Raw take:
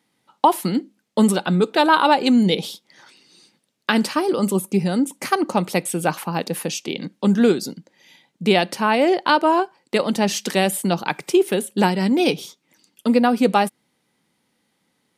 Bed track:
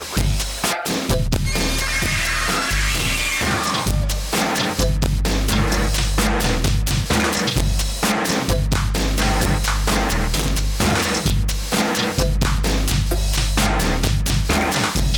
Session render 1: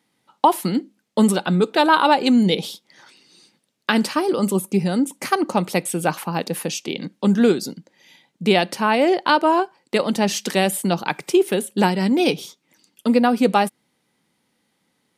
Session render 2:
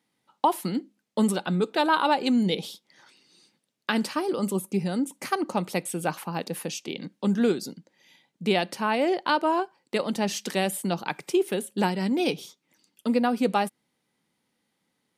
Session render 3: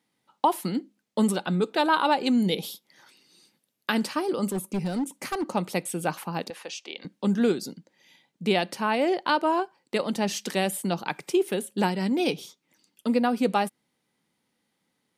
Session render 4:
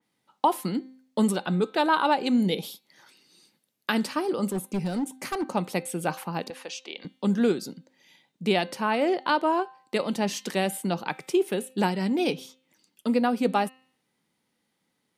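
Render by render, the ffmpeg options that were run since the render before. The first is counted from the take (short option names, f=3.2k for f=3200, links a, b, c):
-af anull
-af "volume=-7dB"
-filter_complex "[0:a]asettb=1/sr,asplit=3[a][b][c];[a]atrim=end=2.424[d];[b]atrim=start=2.42:end=3.95,asetpts=PTS-STARTPTS,afade=t=in:d=0.004:c=qsin,afade=t=out:st=1.526:d=0.004:c=qsin,equalizer=f=12k:t=o:w=0.35:g=13.5[e];[c]atrim=start=3.946[f];[d][e]acrossfade=d=0.004:c1=hsin:c2=qsin[g];[g][f]acrossfade=d=0.004:c1=qsin:c2=hsin,asettb=1/sr,asplit=3[h][i][j];[h]atrim=end=4.484[k];[i]atrim=start=4.48:end=5.45,asetpts=PTS-STARTPTS,afade=t=in:d=0.004:c=qsin,afade=t=out:st=0.966:d=0.004:c=qsin,asoftclip=type=hard:threshold=-23.5dB[l];[j]atrim=start=5.446[m];[k][l]acrossfade=d=0.004:c1=hsin:c2=qsin[n];[n][m]acrossfade=d=0.004:c1=qsin:c2=hsin,asettb=1/sr,asplit=3[o][p][q];[o]atrim=end=6.504[r];[p]atrim=start=6.5:end=7.05,asetpts=PTS-STARTPTS,afade=t=in:d=0.004:c=qsin,afade=t=out:st=0.546:d=0.004:c=qsin,highpass=590,lowpass=5.6k[s];[q]atrim=start=7.046[t];[r][s]acrossfade=d=0.004:c1=hsin:c2=qsin[u];[u][t]acrossfade=d=0.004:c1=qsin:c2=hsin"
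-af "bandreject=f=259.6:t=h:w=4,bandreject=f=519.2:t=h:w=4,bandreject=f=778.8:t=h:w=4,bandreject=f=1.0384k:t=h:w=4,bandreject=f=1.298k:t=h:w=4,bandreject=f=1.5576k:t=h:w=4,bandreject=f=1.8172k:t=h:w=4,bandreject=f=2.0768k:t=h:w=4,bandreject=f=2.3364k:t=h:w=4,bandreject=f=2.596k:t=h:w=4,bandreject=f=2.8556k:t=h:w=4,bandreject=f=3.1152k:t=h:w=4,bandreject=f=3.3748k:t=h:w=4,bandreject=f=3.6344k:t=h:w=4,bandreject=f=3.894k:t=h:w=4,bandreject=f=4.1536k:t=h:w=4,bandreject=f=4.4132k:t=h:w=4,adynamicequalizer=threshold=0.00891:dfrequency=2800:dqfactor=0.7:tfrequency=2800:tqfactor=0.7:attack=5:release=100:ratio=0.375:range=1.5:mode=cutabove:tftype=highshelf"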